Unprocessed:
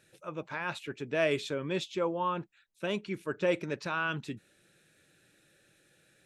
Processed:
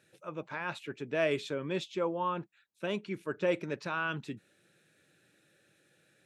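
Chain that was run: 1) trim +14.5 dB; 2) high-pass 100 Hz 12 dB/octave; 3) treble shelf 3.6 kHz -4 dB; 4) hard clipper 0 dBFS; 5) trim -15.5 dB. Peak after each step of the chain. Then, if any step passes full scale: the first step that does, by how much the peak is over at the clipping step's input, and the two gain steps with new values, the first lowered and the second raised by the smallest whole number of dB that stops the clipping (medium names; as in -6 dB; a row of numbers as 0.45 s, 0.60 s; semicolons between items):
-1.5 dBFS, -1.0 dBFS, -1.5 dBFS, -1.5 dBFS, -17.0 dBFS; nothing clips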